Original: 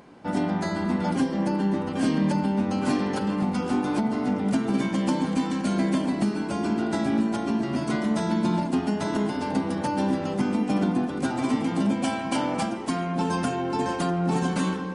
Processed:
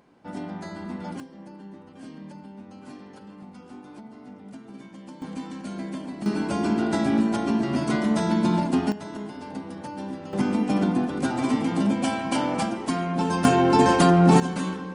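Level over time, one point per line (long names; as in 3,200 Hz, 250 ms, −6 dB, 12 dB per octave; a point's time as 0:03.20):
−9 dB
from 0:01.20 −18.5 dB
from 0:05.22 −9.5 dB
from 0:06.26 +2 dB
from 0:08.92 −9.5 dB
from 0:10.33 +1 dB
from 0:13.45 +9 dB
from 0:14.40 −3 dB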